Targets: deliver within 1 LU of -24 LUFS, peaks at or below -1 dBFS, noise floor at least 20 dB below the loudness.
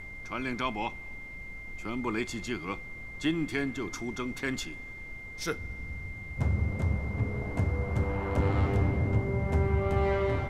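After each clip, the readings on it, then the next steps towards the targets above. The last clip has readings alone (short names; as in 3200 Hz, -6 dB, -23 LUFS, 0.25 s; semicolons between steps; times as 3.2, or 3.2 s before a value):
steady tone 2100 Hz; tone level -42 dBFS; noise floor -43 dBFS; noise floor target -52 dBFS; loudness -31.5 LUFS; peak -15.5 dBFS; loudness target -24.0 LUFS
-> notch 2100 Hz, Q 30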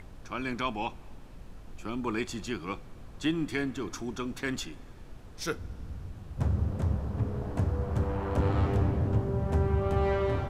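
steady tone none; noise floor -48 dBFS; noise floor target -52 dBFS
-> noise print and reduce 6 dB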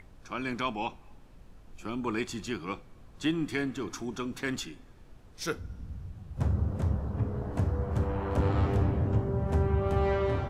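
noise floor -54 dBFS; loudness -31.5 LUFS; peak -15.5 dBFS; loudness target -24.0 LUFS
-> gain +7.5 dB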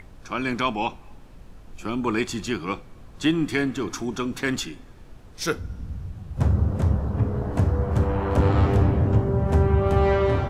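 loudness -24.0 LUFS; peak -8.0 dBFS; noise floor -46 dBFS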